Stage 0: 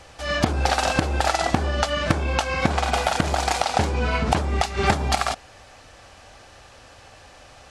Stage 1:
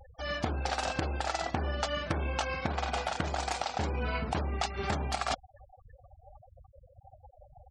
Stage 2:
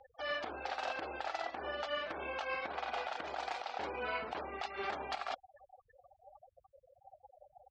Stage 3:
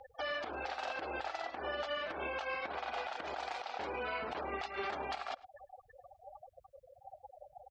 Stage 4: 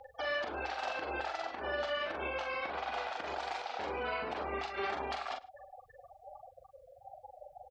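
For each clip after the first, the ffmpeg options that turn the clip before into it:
ffmpeg -i in.wav -af "afftfilt=real='re*gte(hypot(re,im),0.02)':imag='im*gte(hypot(re,im),0.02)':win_size=1024:overlap=0.75,areverse,acompressor=threshold=-28dB:ratio=16,areverse" out.wav
ffmpeg -i in.wav -filter_complex "[0:a]acrossover=split=340 4500:gain=0.0631 1 0.0708[link_01][link_02][link_03];[link_01][link_02][link_03]amix=inputs=3:normalize=0,alimiter=level_in=2dB:limit=-24dB:level=0:latency=1:release=108,volume=-2dB,volume=-1dB" out.wav
ffmpeg -i in.wav -filter_complex "[0:a]alimiter=level_in=11dB:limit=-24dB:level=0:latency=1:release=212,volume=-11dB,asplit=2[link_01][link_02];[link_02]adelay=105,volume=-21dB,highshelf=frequency=4000:gain=-2.36[link_03];[link_01][link_03]amix=inputs=2:normalize=0,volume=6dB" out.wav
ffmpeg -i in.wav -filter_complex "[0:a]asplit=2[link_01][link_02];[link_02]adelay=43,volume=-5dB[link_03];[link_01][link_03]amix=inputs=2:normalize=0,volume=1dB" out.wav

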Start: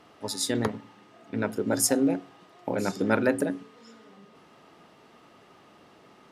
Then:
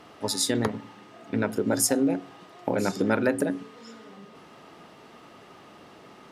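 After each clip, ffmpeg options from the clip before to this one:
ffmpeg -i in.wav -af "acompressor=threshold=-29dB:ratio=2,volume=5.5dB" out.wav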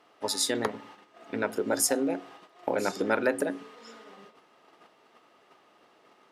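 ffmpeg -i in.wav -af "agate=range=-10dB:threshold=-47dB:ratio=16:detection=peak,bass=frequency=250:gain=-14,treble=frequency=4000:gain=-2" out.wav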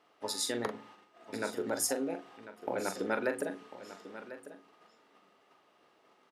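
ffmpeg -i in.wav -filter_complex "[0:a]asplit=2[link_01][link_02];[link_02]adelay=42,volume=-9dB[link_03];[link_01][link_03]amix=inputs=2:normalize=0,aecho=1:1:1046:0.2,volume=-6.5dB" out.wav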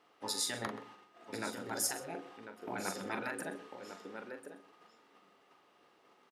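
ffmpeg -i in.wav -filter_complex "[0:a]bandreject=frequency=630:width=12,asplit=2[link_01][link_02];[link_02]adelay=128.3,volume=-16dB,highshelf=frequency=4000:gain=-2.89[link_03];[link_01][link_03]amix=inputs=2:normalize=0,afftfilt=real='re*lt(hypot(re,im),0.0891)':imag='im*lt(hypot(re,im),0.0891)':win_size=1024:overlap=0.75" out.wav

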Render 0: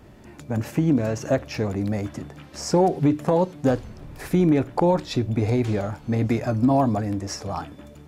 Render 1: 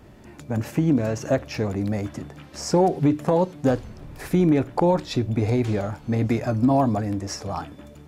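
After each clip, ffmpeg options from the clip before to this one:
ffmpeg -i in.wav -af anull out.wav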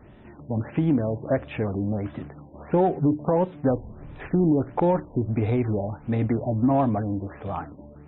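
ffmpeg -i in.wav -filter_complex "[0:a]asplit=2[link_01][link_02];[link_02]volume=20dB,asoftclip=hard,volume=-20dB,volume=-12dB[link_03];[link_01][link_03]amix=inputs=2:normalize=0,afftfilt=real='re*lt(b*sr/1024,990*pow(4000/990,0.5+0.5*sin(2*PI*1.5*pts/sr)))':imag='im*lt(b*sr/1024,990*pow(4000/990,0.5+0.5*sin(2*PI*1.5*pts/sr)))':win_size=1024:overlap=0.75,volume=-3dB" out.wav

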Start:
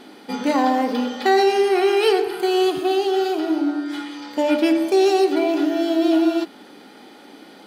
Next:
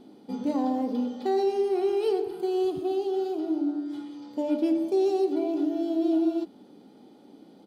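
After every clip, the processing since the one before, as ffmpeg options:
ffmpeg -i in.wav -af "firequalizer=gain_entry='entry(110,0);entry(290,-6);entry(1700,-25);entry(3500,-17)':delay=0.05:min_phase=1" out.wav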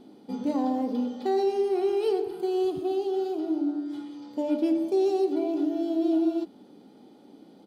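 ffmpeg -i in.wav -af anull out.wav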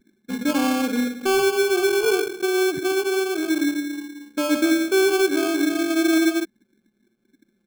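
ffmpeg -i in.wav -af "anlmdn=6.31,acrusher=samples=23:mix=1:aa=0.000001,volume=5.5dB" out.wav

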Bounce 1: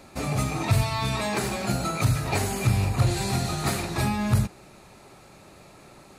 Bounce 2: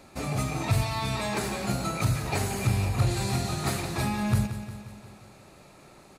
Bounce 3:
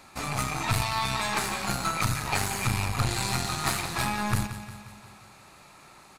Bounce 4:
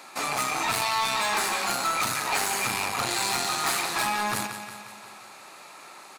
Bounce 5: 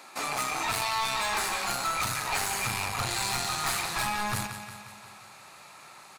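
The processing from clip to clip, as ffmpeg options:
ffmpeg -i in.wav -af "aecho=1:1:177|354|531|708|885|1062:0.266|0.152|0.0864|0.0493|0.0281|0.016,volume=-3dB" out.wav
ffmpeg -i in.wav -af "aeval=exprs='0.237*(cos(1*acos(clip(val(0)/0.237,-1,1)))-cos(1*PI/2))+0.0376*(cos(4*acos(clip(val(0)/0.237,-1,1)))-cos(4*PI/2))+0.00473*(cos(8*acos(clip(val(0)/0.237,-1,1)))-cos(8*PI/2))':channel_layout=same,lowshelf=frequency=730:width_type=q:width=1.5:gain=-7,volume=3dB" out.wav
ffmpeg -i in.wav -af "highpass=360,asoftclip=type=tanh:threshold=-26.5dB,volume=6.5dB" out.wav
ffmpeg -i in.wav -af "asubboost=boost=8:cutoff=110,volume=-3dB" out.wav

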